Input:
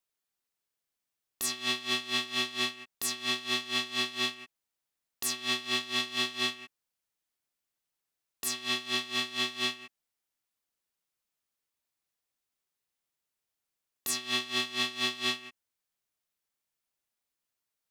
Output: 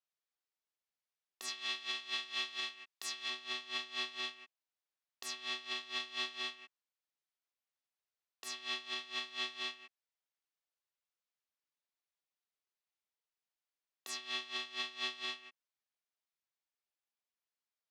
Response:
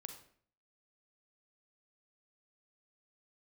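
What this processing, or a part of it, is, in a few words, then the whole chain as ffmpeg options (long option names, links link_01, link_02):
DJ mixer with the lows and highs turned down: -filter_complex "[0:a]asettb=1/sr,asplit=3[link_01][link_02][link_03];[link_01]atrim=end=1.484[link_04];[link_02]atrim=start=1.48:end=3.3,asetpts=PTS-STARTPTS,afade=type=in:duration=0.004:curve=qsin,afade=type=out:start_time=1.816:duration=0.004:curve=qsin,tiltshelf=frequency=860:gain=-3.5[link_05];[link_03]atrim=start=3.296[link_06];[link_04][link_05]acrossfade=duration=0.004:curve1=hsin:curve2=qsin[link_07];[link_07][link_06]acrossfade=duration=0.004:curve1=qsin:curve2=hsin,acrossover=split=360 6500:gain=0.158 1 0.158[link_08][link_09][link_10];[link_08][link_09][link_10]amix=inputs=3:normalize=0,alimiter=limit=-18.5dB:level=0:latency=1:release=257,volume=-7dB"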